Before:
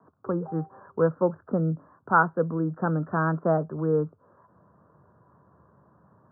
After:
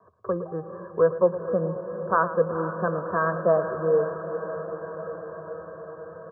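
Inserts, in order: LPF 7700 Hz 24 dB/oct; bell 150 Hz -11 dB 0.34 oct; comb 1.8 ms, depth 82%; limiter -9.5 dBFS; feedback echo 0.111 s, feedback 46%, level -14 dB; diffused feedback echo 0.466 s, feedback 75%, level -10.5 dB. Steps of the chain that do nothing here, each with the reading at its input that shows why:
LPF 7700 Hz: input band ends at 1700 Hz

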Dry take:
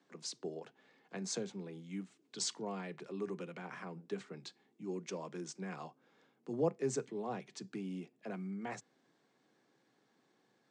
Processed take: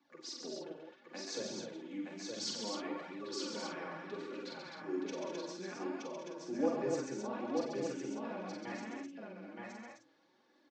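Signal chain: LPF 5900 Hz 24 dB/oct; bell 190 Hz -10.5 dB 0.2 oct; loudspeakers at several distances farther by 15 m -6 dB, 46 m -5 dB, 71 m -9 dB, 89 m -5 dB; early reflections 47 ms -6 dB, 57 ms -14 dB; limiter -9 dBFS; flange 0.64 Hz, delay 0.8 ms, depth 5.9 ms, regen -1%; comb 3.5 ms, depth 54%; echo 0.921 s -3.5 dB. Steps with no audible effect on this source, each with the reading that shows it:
limiter -9 dBFS: input peak -18.5 dBFS

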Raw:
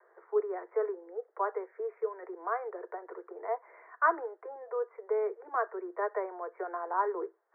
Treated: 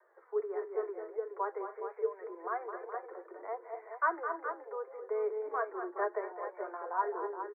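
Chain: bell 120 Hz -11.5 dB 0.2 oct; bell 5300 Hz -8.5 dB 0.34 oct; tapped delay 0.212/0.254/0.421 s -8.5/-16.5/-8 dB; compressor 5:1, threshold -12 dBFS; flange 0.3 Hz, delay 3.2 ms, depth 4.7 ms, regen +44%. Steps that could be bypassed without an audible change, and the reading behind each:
bell 120 Hz: input band starts at 290 Hz; bell 5300 Hz: input band ends at 2000 Hz; compressor, threshold -12 dBFS: input peak -14.0 dBFS

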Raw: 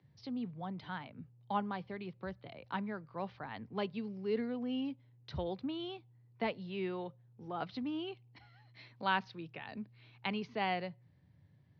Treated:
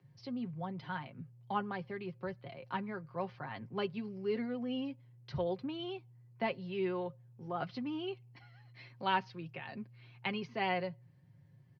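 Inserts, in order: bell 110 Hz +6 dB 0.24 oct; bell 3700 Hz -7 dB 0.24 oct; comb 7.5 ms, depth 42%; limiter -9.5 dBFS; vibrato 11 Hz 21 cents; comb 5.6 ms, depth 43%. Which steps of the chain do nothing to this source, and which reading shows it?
limiter -9.5 dBFS: input peak -18.0 dBFS

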